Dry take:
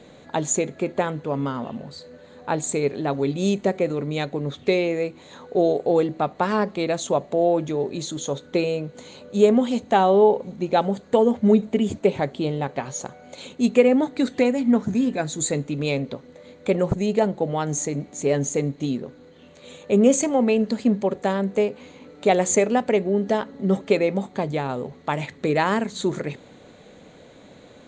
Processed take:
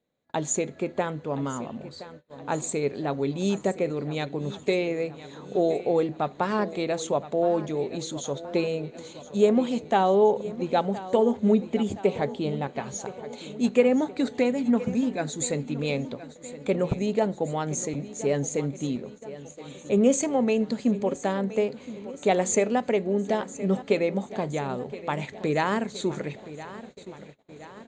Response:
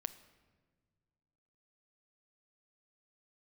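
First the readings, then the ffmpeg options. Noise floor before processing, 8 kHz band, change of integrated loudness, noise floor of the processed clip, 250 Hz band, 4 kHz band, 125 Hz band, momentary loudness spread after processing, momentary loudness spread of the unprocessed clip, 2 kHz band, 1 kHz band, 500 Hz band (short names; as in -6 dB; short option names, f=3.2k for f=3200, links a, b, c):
-48 dBFS, -4.0 dB, -4.0 dB, -48 dBFS, -4.0 dB, -4.0 dB, -4.0 dB, 16 LU, 12 LU, -4.0 dB, -4.0 dB, -4.0 dB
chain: -af "aecho=1:1:1020|2040|3060|4080|5100:0.168|0.0923|0.0508|0.0279|0.0154,agate=range=-29dB:threshold=-40dB:ratio=16:detection=peak,volume=-4dB"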